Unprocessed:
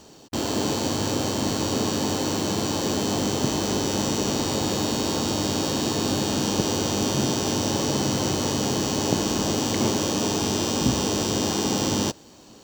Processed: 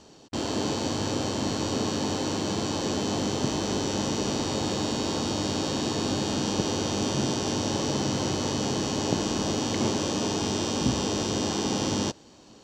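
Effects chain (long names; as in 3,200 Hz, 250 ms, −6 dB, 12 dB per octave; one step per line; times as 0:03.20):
low-pass filter 7,000 Hz 12 dB per octave
level −3 dB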